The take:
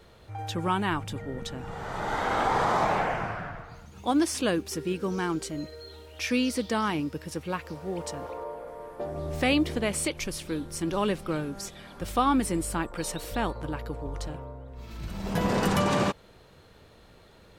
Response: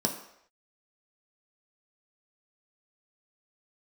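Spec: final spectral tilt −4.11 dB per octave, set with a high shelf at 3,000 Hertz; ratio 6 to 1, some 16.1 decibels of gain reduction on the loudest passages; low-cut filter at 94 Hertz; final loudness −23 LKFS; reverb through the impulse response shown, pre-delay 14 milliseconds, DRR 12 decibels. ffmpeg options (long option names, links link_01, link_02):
-filter_complex "[0:a]highpass=94,highshelf=frequency=3000:gain=4,acompressor=threshold=-38dB:ratio=6,asplit=2[link_01][link_02];[1:a]atrim=start_sample=2205,adelay=14[link_03];[link_02][link_03]afir=irnorm=-1:irlink=0,volume=-19.5dB[link_04];[link_01][link_04]amix=inputs=2:normalize=0,volume=17.5dB"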